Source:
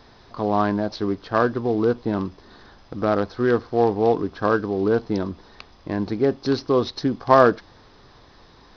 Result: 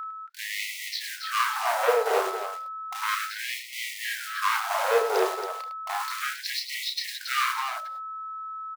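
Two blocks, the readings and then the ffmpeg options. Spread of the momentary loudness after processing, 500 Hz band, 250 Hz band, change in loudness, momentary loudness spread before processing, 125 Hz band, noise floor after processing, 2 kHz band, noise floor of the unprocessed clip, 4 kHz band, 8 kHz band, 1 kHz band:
12 LU, -9.0 dB, under -20 dB, -6.5 dB, 11 LU, under -40 dB, -40 dBFS, +2.5 dB, -51 dBFS, +6.5 dB, no reading, -2.5 dB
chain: -filter_complex "[0:a]highpass=f=100:p=1,agate=range=0.0126:threshold=0.0112:ratio=16:detection=peak,highshelf=f=2000:g=-6.5,acrossover=split=150[s0][s1];[s0]acontrast=53[s2];[s2][s1]amix=inputs=2:normalize=0,alimiter=limit=0.299:level=0:latency=1:release=466,acrusher=bits=3:mode=log:mix=0:aa=0.000001,aeval=exprs='val(0)+0.00891*sin(2*PI*1300*n/s)':c=same,asoftclip=type=hard:threshold=0.0562,asplit=2[s3][s4];[s4]aecho=0:1:32.07|105|277:0.562|0.355|0.447[s5];[s3][s5]amix=inputs=2:normalize=0,afftfilt=real='re*gte(b*sr/1024,370*pow(1900/370,0.5+0.5*sin(2*PI*0.33*pts/sr)))':imag='im*gte(b*sr/1024,370*pow(1900/370,0.5+0.5*sin(2*PI*0.33*pts/sr)))':win_size=1024:overlap=0.75,volume=2.82"

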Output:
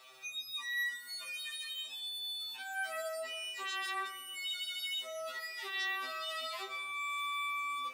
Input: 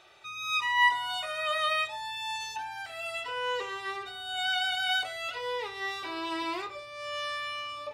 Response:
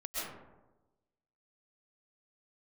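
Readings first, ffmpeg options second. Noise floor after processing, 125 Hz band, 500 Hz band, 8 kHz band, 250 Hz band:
-49 dBFS, under -20 dB, -8.5 dB, -1.0 dB, under -15 dB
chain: -filter_complex "[0:a]aemphasis=mode=production:type=bsi,acrossover=split=1100|4300[s0][s1][s2];[s0]acompressor=threshold=0.00631:ratio=4[s3];[s1]acompressor=threshold=0.01:ratio=4[s4];[s2]acompressor=threshold=0.00398:ratio=4[s5];[s3][s4][s5]amix=inputs=3:normalize=0,afreqshift=-23,asplit=2[s6][s7];[1:a]atrim=start_sample=2205,afade=t=out:st=0.39:d=0.01,atrim=end_sample=17640[s8];[s7][s8]afir=irnorm=-1:irlink=0,volume=0.15[s9];[s6][s9]amix=inputs=2:normalize=0,afftfilt=real='re*2.45*eq(mod(b,6),0)':imag='im*2.45*eq(mod(b,6),0)':win_size=2048:overlap=0.75"

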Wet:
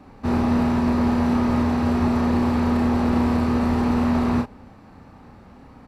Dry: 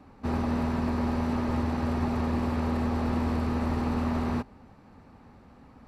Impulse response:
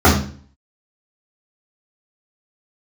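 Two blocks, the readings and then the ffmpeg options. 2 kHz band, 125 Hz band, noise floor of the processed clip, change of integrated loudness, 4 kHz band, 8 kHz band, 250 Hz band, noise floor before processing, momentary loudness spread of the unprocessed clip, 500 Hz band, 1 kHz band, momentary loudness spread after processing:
+7.0 dB, +5.0 dB, -47 dBFS, +8.0 dB, +7.0 dB, no reading, +9.0 dB, -54 dBFS, 2 LU, +7.0 dB, +7.0 dB, 2 LU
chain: -filter_complex "[0:a]asplit=2[s0][s1];[s1]adelay=33,volume=0.631[s2];[s0][s2]amix=inputs=2:normalize=0,volume=1.88"

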